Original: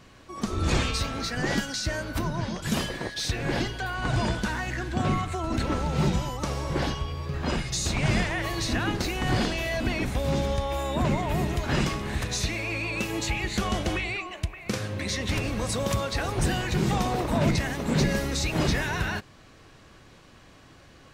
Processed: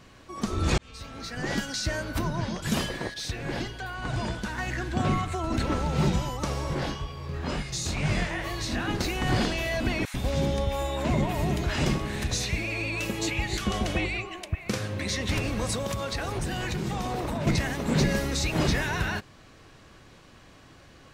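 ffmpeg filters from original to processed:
-filter_complex "[0:a]asplit=3[a][b][c];[a]afade=t=out:st=6.74:d=0.02[d];[b]flanger=delay=19.5:depth=4.7:speed=2.1,afade=t=in:st=6.74:d=0.02,afade=t=out:st=8.88:d=0.02[e];[c]afade=t=in:st=8.88:d=0.02[f];[d][e][f]amix=inputs=3:normalize=0,asettb=1/sr,asplit=3[g][h][i];[g]atrim=end=10.054[j];[h]atrim=start=10.05:end=14.55,asetpts=PTS-STARTPTS,afade=t=in:d=0.004:c=qsin,afade=t=out:st=4.496:d=0.004:c=qsin,acrossover=split=1100[k][l];[k]adelay=90[m];[m][l]amix=inputs=2:normalize=0,atrim=end_sample=198450[n];[i]atrim=start=14.546[o];[j][n]acrossfade=d=0.004:c1=hsin:c2=qsin[p];[p][o]acrossfade=d=0.004:c1=qsin:c2=hsin,asettb=1/sr,asplit=3[q][r][s];[q]atrim=end=15.754[t];[r]atrim=start=15.75:end=17.47,asetpts=PTS-STARTPTS,afade=t=in:d=0.004:c=qsin,afade=t=out:st=1.716:d=0.004:c=qsin,acompressor=threshold=-26dB:ratio=6:attack=3.2:release=140:knee=1:detection=peak[u];[s]atrim=start=17.466[v];[t][u]acrossfade=d=0.004:c1=hsin:c2=qsin[w];[w][v]acrossfade=d=0.004:c1=qsin:c2=hsin,asplit=4[x][y][z][aa];[x]atrim=end=0.78,asetpts=PTS-STARTPTS,afade=t=out:st=0.776:d=0.004:c=hsin[ab];[y]atrim=start=0.78:end=3.142,asetpts=PTS-STARTPTS,afade=t=in:d=1.03[ac];[z]atrim=start=3.138:end=4.582,asetpts=PTS-STARTPTS,volume=-4.5dB[ad];[aa]atrim=start=4.578[ae];[ab][ac]concat=n=2:v=0:a=1[af];[af][ad]acrossfade=d=0.004:c1=hsin:c2=hsin[ag];[ag][ae]acrossfade=d=0.004:c1=hsin:c2=hsin"

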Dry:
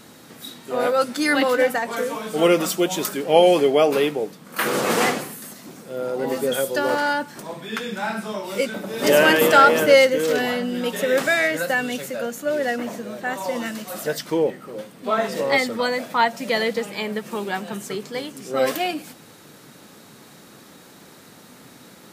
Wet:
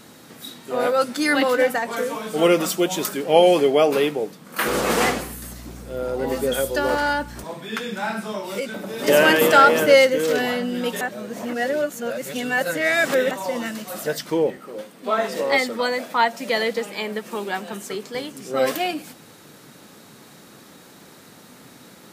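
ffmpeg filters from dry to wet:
-filter_complex "[0:a]asettb=1/sr,asplit=3[a][b][c];[a]atrim=end=4.684[d];[b]atrim=start=4.68:end=7.44,asetpts=PTS-STARTPTS,afade=t=in:d=0.004:c=qsin,afade=t=out:st=2.756:d=0.004:c=qsin,aeval=exprs='val(0)+0.0126*(sin(2*PI*60*n/s)+sin(2*PI*2*60*n/s)/2+sin(2*PI*3*60*n/s)/3+sin(2*PI*4*60*n/s)/4+sin(2*PI*5*60*n/s)/5)':c=same[e];[c]atrim=start=7.436[f];[d][e]acrossfade=d=0.004:c1=hsin:c2=qsin[g];[g][f]acrossfade=d=0.004:c1=qsin:c2=hsin,asettb=1/sr,asplit=3[h][i][j];[h]atrim=end=8.594[k];[i]atrim=start=8.59:end=9.08,asetpts=PTS-STARTPTS,afade=t=in:d=0.004:c=qsin,afade=t=out:st=0.486:d=0.004:c=qsin,acompressor=threshold=-27dB:ratio=2:attack=3.2:release=140:knee=1:detection=peak[l];[j]atrim=start=9.076[m];[k][l]acrossfade=d=0.004:c1=hsin:c2=qsin[n];[n][m]acrossfade=d=0.004:c1=qsin:c2=hsin,asettb=1/sr,asplit=3[o][p][q];[o]atrim=end=14.574[r];[p]atrim=start=14.57:end=18.15,asetpts=PTS-STARTPTS,afade=t=in:d=0.004:c=qsin,afade=t=out:st=3.576:d=0.004:c=qsin,highpass=210[s];[q]atrim=start=18.146[t];[r][s]acrossfade=d=0.004:c1=hsin:c2=qsin[u];[u][t]acrossfade=d=0.004:c1=qsin:c2=hsin,asplit=3[v][w][x];[v]atrim=end=11.012[y];[w]atrim=start=11.008:end=13.312,asetpts=PTS-STARTPTS,areverse[z];[x]atrim=start=13.308[aa];[y][z]acrossfade=d=0.004:c1=hsin:c2=hsin[ab];[ab][aa]acrossfade=d=0.004:c1=hsin:c2=hsin"

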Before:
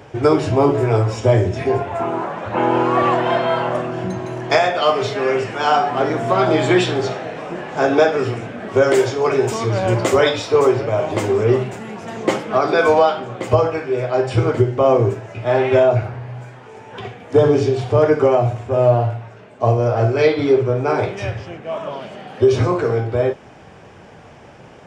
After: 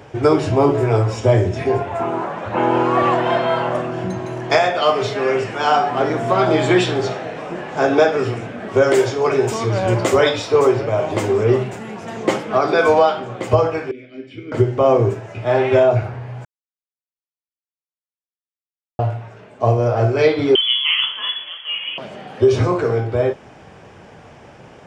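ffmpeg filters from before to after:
-filter_complex "[0:a]asettb=1/sr,asplit=3[a][b][c];[a]atrim=end=13.914[d];[b]atrim=start=13.91:end=14.52,asetpts=PTS-STARTPTS,afade=t=in:d=0.004:c=qsin,afade=t=out:st=0.606:d=0.004:c=qsin,asplit=3[e][f][g];[e]bandpass=f=270:t=q:w=8,volume=0dB[h];[f]bandpass=f=2.29k:t=q:w=8,volume=-6dB[i];[g]bandpass=f=3.01k:t=q:w=8,volume=-9dB[j];[h][i][j]amix=inputs=3:normalize=0[k];[c]atrim=start=14.516[l];[d][k]acrossfade=d=0.004:c1=hsin:c2=qsin[m];[m][l]acrossfade=d=0.004:c1=qsin:c2=hsin,asettb=1/sr,asplit=3[n][o][p];[n]atrim=end=20.554[q];[o]atrim=start=20.55:end=21.98,asetpts=PTS-STARTPTS,afade=t=in:d=0.004:c=qsin,afade=t=out:st=1.426:d=0.004:c=qsin,lowpass=f=3k:t=q:w=0.5098,lowpass=f=3k:t=q:w=0.6013,lowpass=f=3k:t=q:w=0.9,lowpass=f=3k:t=q:w=2.563,afreqshift=-3500[r];[p]atrim=start=21.976[s];[q][r]acrossfade=d=0.004:c1=hsin:c2=qsin[t];[t][s]acrossfade=d=0.004:c1=qsin:c2=hsin,asplit=3[u][v][w];[u]atrim=end=16.45,asetpts=PTS-STARTPTS,afade=t=out:st=16.446:d=0.004:c=hsin[x];[v]atrim=start=16.45:end=18.99,asetpts=PTS-STARTPTS,volume=0[y];[w]atrim=start=18.99,asetpts=PTS-STARTPTS,afade=t=in:d=0.004:c=hsin[z];[x][y][z]concat=n=3:v=0:a=1"

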